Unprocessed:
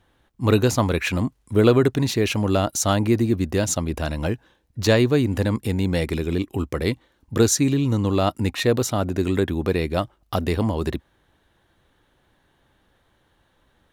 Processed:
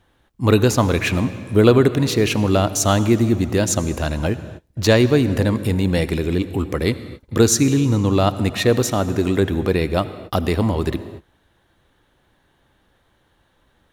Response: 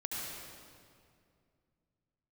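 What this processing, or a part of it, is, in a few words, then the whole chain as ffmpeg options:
keyed gated reverb: -filter_complex "[0:a]asplit=3[link_01][link_02][link_03];[1:a]atrim=start_sample=2205[link_04];[link_02][link_04]afir=irnorm=-1:irlink=0[link_05];[link_03]apad=whole_len=613915[link_06];[link_05][link_06]sidechaingate=range=-33dB:threshold=-52dB:ratio=16:detection=peak,volume=-13.5dB[link_07];[link_01][link_07]amix=inputs=2:normalize=0,volume=2dB"

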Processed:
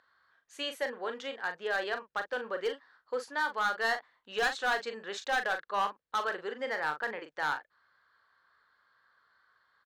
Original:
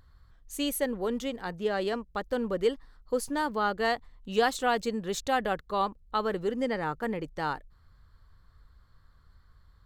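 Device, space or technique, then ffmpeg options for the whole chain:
megaphone: -filter_complex "[0:a]asettb=1/sr,asplit=3[link_01][link_02][link_03];[link_01]atrim=end=3.284[link_04];[link_02]atrim=start=3.28:end=3.73,asetpts=PTS-STARTPTS,afade=type=in:duration=0.004:curve=qsin,afade=type=out:start_time=0.446:duration=0.004:curve=qsin,lowshelf=frequency=470:gain=-5[link_05];[link_03]atrim=start=3.726[link_06];[link_04][link_05]acrossfade=duration=0.004:curve1=hsin:curve2=qsin[link_07];[link_07][link_06]acrossfade=duration=0.004:curve1=qsin:curve2=hsin,highpass=640,lowpass=4000,equalizer=frequency=1600:width_type=o:width=0.34:gain=8,asoftclip=type=hard:threshold=-24.5dB,asplit=2[link_08][link_09];[link_09]adelay=40,volume=-8.5dB[link_10];[link_08][link_10]amix=inputs=2:normalize=0"

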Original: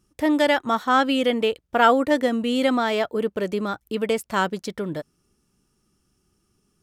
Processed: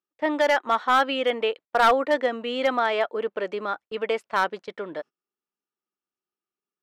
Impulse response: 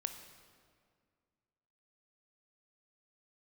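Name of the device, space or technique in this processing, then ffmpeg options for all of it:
walkie-talkie: -af "highpass=500,lowpass=2900,asoftclip=type=hard:threshold=-14dB,agate=range=-20dB:threshold=-41dB:ratio=16:detection=peak,volume=1.5dB"

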